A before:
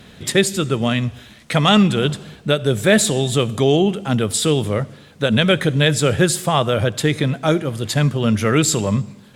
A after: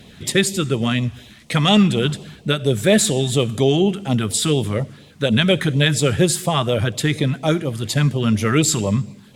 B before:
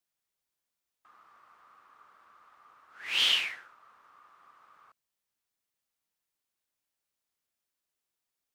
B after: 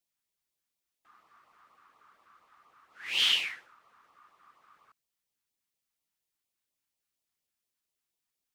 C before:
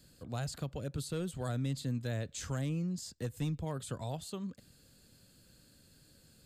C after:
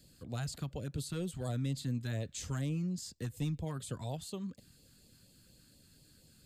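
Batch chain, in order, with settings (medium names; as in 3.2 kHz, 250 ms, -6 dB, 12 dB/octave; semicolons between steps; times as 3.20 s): LFO notch sine 4.2 Hz 480–1600 Hz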